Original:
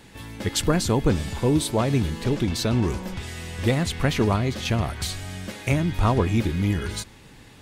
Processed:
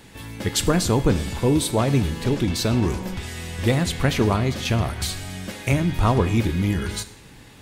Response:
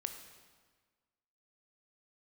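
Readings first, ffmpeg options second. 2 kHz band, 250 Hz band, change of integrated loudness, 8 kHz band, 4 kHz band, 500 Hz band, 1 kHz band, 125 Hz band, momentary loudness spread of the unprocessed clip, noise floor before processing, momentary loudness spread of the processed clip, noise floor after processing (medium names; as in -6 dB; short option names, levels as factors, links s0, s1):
+2.0 dB, +1.5 dB, +2.0 dB, +3.0 dB, +2.0 dB, +1.5 dB, +2.0 dB, +2.0 dB, 12 LU, -48 dBFS, 11 LU, -46 dBFS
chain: -filter_complex "[0:a]asplit=2[s0][s1];[1:a]atrim=start_sample=2205,asetrate=83790,aresample=44100,highshelf=f=9700:g=7.5[s2];[s1][s2]afir=irnorm=-1:irlink=0,volume=2.11[s3];[s0][s3]amix=inputs=2:normalize=0,volume=0.631"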